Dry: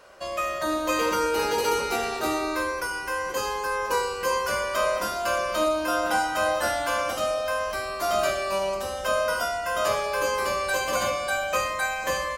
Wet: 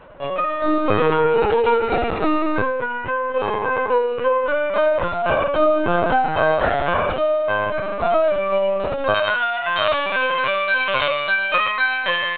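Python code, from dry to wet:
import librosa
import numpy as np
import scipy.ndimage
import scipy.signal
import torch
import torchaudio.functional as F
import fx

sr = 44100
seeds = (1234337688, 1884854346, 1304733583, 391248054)

y = fx.rattle_buzz(x, sr, strikes_db=-42.0, level_db=-31.0)
y = fx.tilt_eq(y, sr, slope=fx.steps((0.0, -2.5), (9.13, 4.0)))
y = fx.lpc_vocoder(y, sr, seeds[0], excitation='pitch_kept', order=16)
y = y * librosa.db_to_amplitude(6.0)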